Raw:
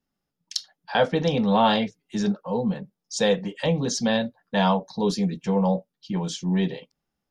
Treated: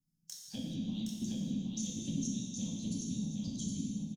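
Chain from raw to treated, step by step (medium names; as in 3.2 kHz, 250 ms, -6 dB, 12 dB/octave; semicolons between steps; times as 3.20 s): tone controls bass +15 dB, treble +4 dB; harmonic-percussive split harmonic -17 dB; FFT filter 120 Hz 0 dB, 240 Hz +12 dB, 460 Hz -15 dB, 1.1 kHz -24 dB, 6 kHz +10 dB; compression 6:1, threshold -30 dBFS, peak gain reduction 17.5 dB; granular stretch 0.57×, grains 48 ms; touch-sensitive flanger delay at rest 6.4 ms, full sweep at -35.5 dBFS; on a send: feedback delay 767 ms, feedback 27%, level -3.5 dB; on the sum: gated-style reverb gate 450 ms falling, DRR -3.5 dB; trim -8.5 dB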